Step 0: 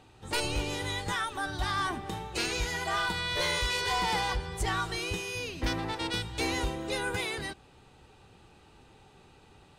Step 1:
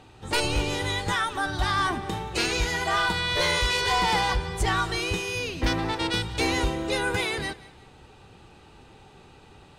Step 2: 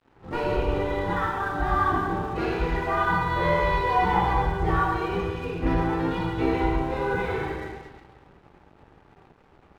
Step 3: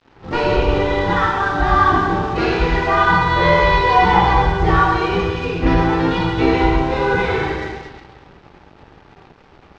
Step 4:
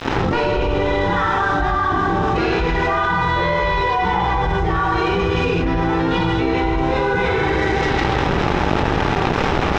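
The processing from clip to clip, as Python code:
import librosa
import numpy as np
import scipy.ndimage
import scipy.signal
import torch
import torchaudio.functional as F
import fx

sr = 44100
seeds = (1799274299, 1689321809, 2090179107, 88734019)

y1 = fx.high_shelf(x, sr, hz=8700.0, db=-5.0)
y1 = fx.echo_feedback(y1, sr, ms=179, feedback_pct=36, wet_db=-20.0)
y1 = y1 * librosa.db_to_amplitude(6.0)
y2 = scipy.signal.sosfilt(scipy.signal.butter(2, 1300.0, 'lowpass', fs=sr, output='sos'), y1)
y2 = fx.rev_plate(y2, sr, seeds[0], rt60_s=1.6, hf_ratio=0.95, predelay_ms=0, drr_db=-6.5)
y2 = np.sign(y2) * np.maximum(np.abs(y2) - 10.0 ** (-45.5 / 20.0), 0.0)
y2 = y2 * librosa.db_to_amplitude(-3.5)
y3 = scipy.signal.sosfilt(scipy.signal.butter(4, 5800.0, 'lowpass', fs=sr, output='sos'), y2)
y3 = fx.high_shelf(y3, sr, hz=3700.0, db=11.0)
y3 = y3 * librosa.db_to_amplitude(8.5)
y4 = fx.notch(y3, sr, hz=4500.0, q=13.0)
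y4 = fx.env_flatten(y4, sr, amount_pct=100)
y4 = y4 * librosa.db_to_amplitude(-8.5)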